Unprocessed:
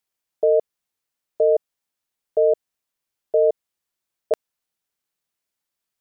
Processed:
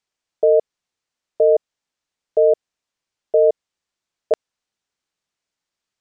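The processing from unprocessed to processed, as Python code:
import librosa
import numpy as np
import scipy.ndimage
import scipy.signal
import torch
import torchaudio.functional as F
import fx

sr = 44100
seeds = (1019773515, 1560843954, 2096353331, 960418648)

y = scipy.signal.sosfilt(scipy.signal.butter(4, 7600.0, 'lowpass', fs=sr, output='sos'), x)
y = F.gain(torch.from_numpy(y), 3.0).numpy()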